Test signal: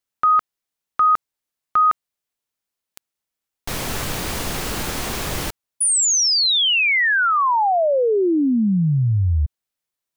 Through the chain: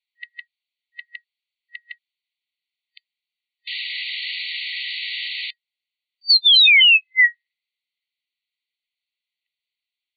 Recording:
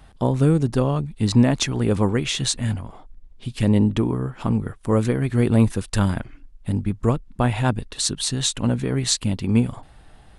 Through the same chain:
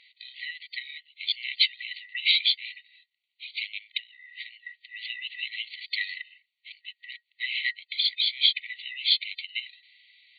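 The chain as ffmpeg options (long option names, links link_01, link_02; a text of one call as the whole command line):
ffmpeg -i in.wav -af "afftfilt=real='real(if(lt(b,1008),b+24*(1-2*mod(floor(b/24),2)),b),0)':imag='imag(if(lt(b,1008),b+24*(1-2*mod(floor(b/24),2)),b),0)':win_size=2048:overlap=0.75,afftfilt=real='re*between(b*sr/4096,1900,4600)':imag='im*between(b*sr/4096,1900,4600)':win_size=4096:overlap=0.75,volume=6dB" out.wav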